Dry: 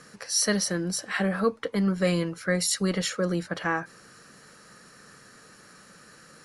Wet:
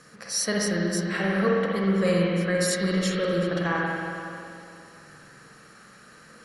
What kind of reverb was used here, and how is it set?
spring tank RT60 2.6 s, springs 46/59 ms, chirp 45 ms, DRR -3.5 dB; gain -2.5 dB

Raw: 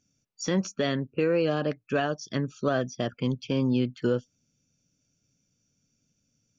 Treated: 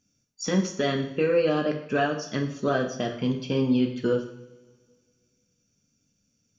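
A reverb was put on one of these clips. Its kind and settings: two-slope reverb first 0.6 s, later 2 s, from -20 dB, DRR 2 dB

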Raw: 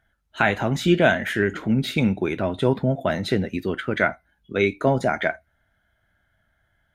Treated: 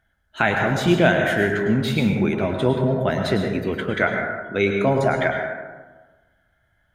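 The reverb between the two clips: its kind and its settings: plate-style reverb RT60 1.3 s, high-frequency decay 0.4×, pre-delay 90 ms, DRR 2.5 dB

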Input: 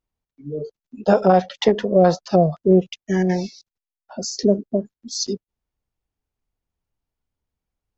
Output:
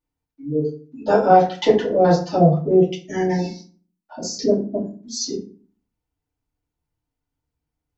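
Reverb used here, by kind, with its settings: FDN reverb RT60 0.41 s, low-frequency decay 1.4×, high-frequency decay 0.65×, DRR -7 dB; gain -7 dB

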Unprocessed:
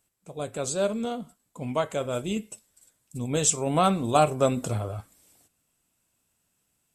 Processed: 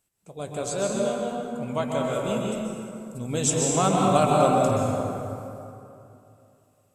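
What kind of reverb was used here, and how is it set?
plate-style reverb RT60 2.8 s, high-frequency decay 0.5×, pre-delay 0.115 s, DRR -2.5 dB; gain -2 dB

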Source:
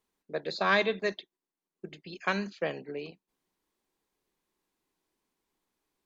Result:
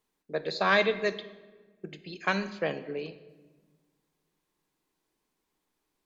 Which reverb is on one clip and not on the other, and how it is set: shoebox room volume 1100 m³, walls mixed, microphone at 0.46 m; gain +1.5 dB

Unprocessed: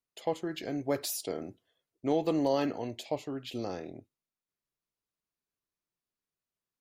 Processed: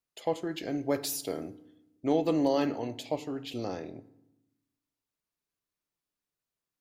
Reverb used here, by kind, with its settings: FDN reverb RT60 0.88 s, low-frequency decay 1.5×, high-frequency decay 0.7×, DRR 14 dB; gain +1 dB

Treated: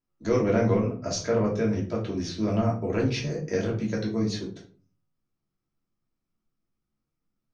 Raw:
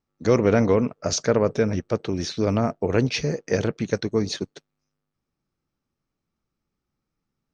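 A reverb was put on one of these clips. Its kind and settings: shoebox room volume 260 m³, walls furnished, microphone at 2.9 m; gain -10.5 dB

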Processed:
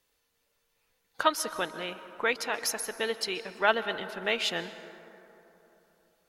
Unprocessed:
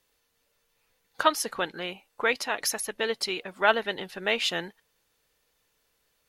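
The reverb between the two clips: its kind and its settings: plate-style reverb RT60 3.4 s, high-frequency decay 0.35×, pre-delay 0.115 s, DRR 12.5 dB; gain -2.5 dB

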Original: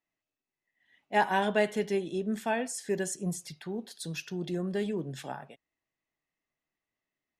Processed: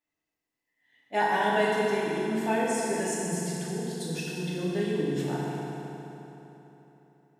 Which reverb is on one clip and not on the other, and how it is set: FDN reverb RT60 3.6 s, high-frequency decay 0.75×, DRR -6.5 dB; gain -3 dB

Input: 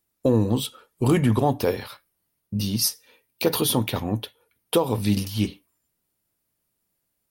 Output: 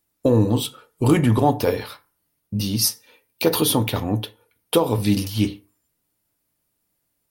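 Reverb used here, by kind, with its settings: FDN reverb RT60 0.35 s, low-frequency decay 0.95×, high-frequency decay 0.5×, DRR 10 dB; gain +2.5 dB

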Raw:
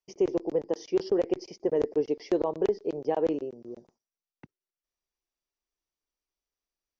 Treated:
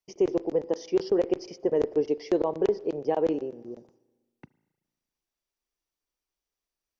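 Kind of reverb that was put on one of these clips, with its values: spring tank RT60 1.3 s, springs 34/38 ms, chirp 30 ms, DRR 19.5 dB; gain +1.5 dB

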